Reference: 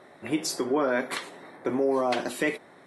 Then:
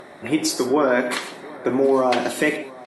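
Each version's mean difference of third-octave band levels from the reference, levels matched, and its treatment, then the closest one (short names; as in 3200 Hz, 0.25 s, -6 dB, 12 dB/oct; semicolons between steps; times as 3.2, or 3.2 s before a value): 2.0 dB: upward compressor, threshold -44 dBFS; echo 0.723 s -21.5 dB; non-linear reverb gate 0.15 s rising, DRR 10.5 dB; gain +6.5 dB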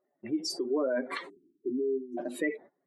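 12.5 dB: spectral contrast raised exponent 2.2; gate -44 dBFS, range -23 dB; spectral delete 1.29–2.18, 410–5600 Hz; gain -3.5 dB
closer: first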